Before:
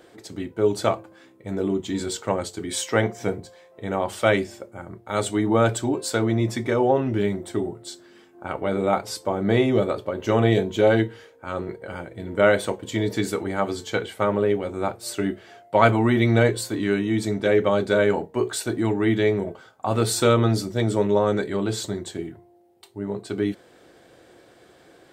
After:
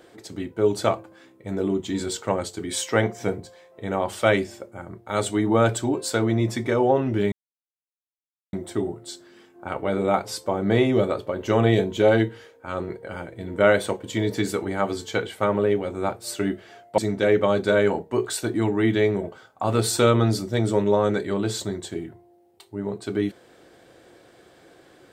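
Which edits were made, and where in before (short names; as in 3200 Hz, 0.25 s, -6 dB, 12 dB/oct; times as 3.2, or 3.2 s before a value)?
7.32 insert silence 1.21 s
15.77–17.21 cut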